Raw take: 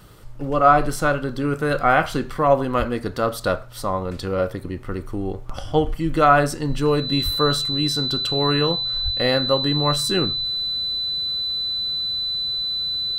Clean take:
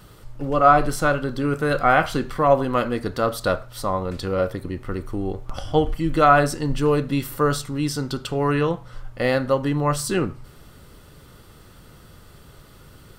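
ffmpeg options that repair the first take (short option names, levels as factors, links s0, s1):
-filter_complex "[0:a]bandreject=f=4000:w=30,asplit=3[s0][s1][s2];[s0]afade=t=out:st=2.78:d=0.02[s3];[s1]highpass=f=140:w=0.5412,highpass=f=140:w=1.3066,afade=t=in:st=2.78:d=0.02,afade=t=out:st=2.9:d=0.02[s4];[s2]afade=t=in:st=2.9:d=0.02[s5];[s3][s4][s5]amix=inputs=3:normalize=0,asplit=3[s6][s7][s8];[s6]afade=t=out:st=7.24:d=0.02[s9];[s7]highpass=f=140:w=0.5412,highpass=f=140:w=1.3066,afade=t=in:st=7.24:d=0.02,afade=t=out:st=7.36:d=0.02[s10];[s8]afade=t=in:st=7.36:d=0.02[s11];[s9][s10][s11]amix=inputs=3:normalize=0,asplit=3[s12][s13][s14];[s12]afade=t=out:st=9.04:d=0.02[s15];[s13]highpass=f=140:w=0.5412,highpass=f=140:w=1.3066,afade=t=in:st=9.04:d=0.02,afade=t=out:st=9.16:d=0.02[s16];[s14]afade=t=in:st=9.16:d=0.02[s17];[s15][s16][s17]amix=inputs=3:normalize=0"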